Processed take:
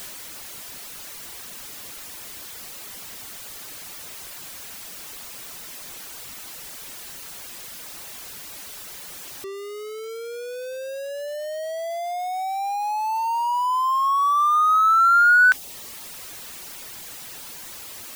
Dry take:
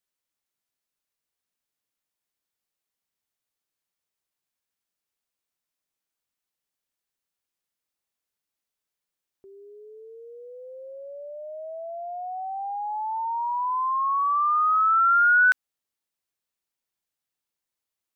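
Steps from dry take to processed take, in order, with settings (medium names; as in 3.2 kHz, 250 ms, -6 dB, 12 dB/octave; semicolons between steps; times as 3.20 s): jump at every zero crossing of -34 dBFS; reverb removal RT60 0.63 s; trim +4.5 dB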